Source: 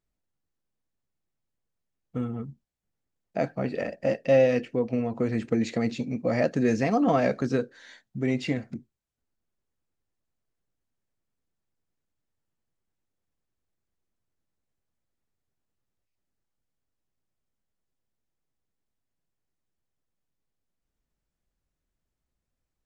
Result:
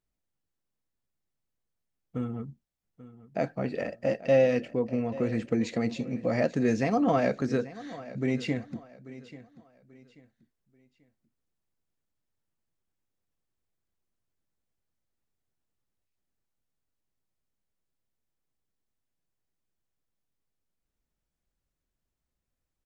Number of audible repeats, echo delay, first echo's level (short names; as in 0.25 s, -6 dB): 2, 0.837 s, -17.0 dB